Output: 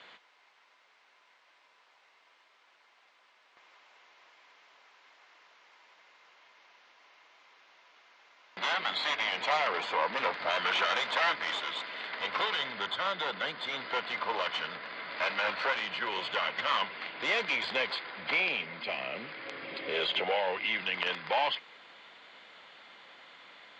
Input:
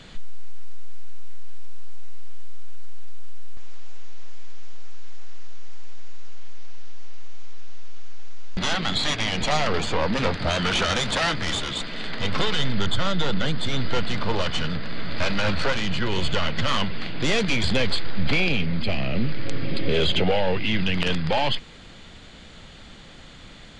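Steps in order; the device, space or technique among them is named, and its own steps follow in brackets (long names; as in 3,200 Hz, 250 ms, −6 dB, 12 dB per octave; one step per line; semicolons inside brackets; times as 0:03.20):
tin-can telephone (band-pass filter 660–3,000 Hz; hollow resonant body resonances 1,000/2,100 Hz, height 7 dB)
level −3 dB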